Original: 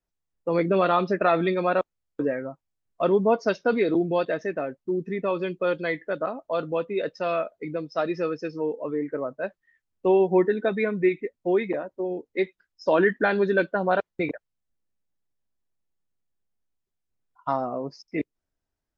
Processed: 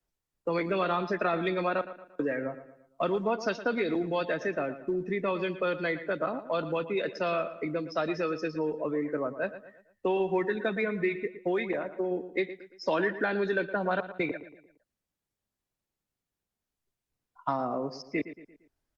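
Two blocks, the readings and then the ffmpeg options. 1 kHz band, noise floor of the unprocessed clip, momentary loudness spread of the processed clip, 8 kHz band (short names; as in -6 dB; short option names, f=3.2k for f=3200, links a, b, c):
-5.0 dB, -83 dBFS, 6 LU, n/a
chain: -filter_complex "[0:a]acrossover=split=140|310|1100[a][b][c][d];[a]acompressor=threshold=-55dB:ratio=4[e];[b]acompressor=threshold=-39dB:ratio=4[f];[c]acompressor=threshold=-34dB:ratio=4[g];[d]acompressor=threshold=-34dB:ratio=4[h];[e][f][g][h]amix=inputs=4:normalize=0,asplit=2[i][j];[j]asoftclip=type=tanh:threshold=-22.5dB,volume=-10.5dB[k];[i][k]amix=inputs=2:normalize=0,asplit=2[l][m];[m]adelay=115,lowpass=f=4k:p=1,volume=-13dB,asplit=2[n][o];[o]adelay=115,lowpass=f=4k:p=1,volume=0.44,asplit=2[p][q];[q]adelay=115,lowpass=f=4k:p=1,volume=0.44,asplit=2[r][s];[s]adelay=115,lowpass=f=4k:p=1,volume=0.44[t];[l][n][p][r][t]amix=inputs=5:normalize=0" -ar 48000 -c:a libopus -b:a 64k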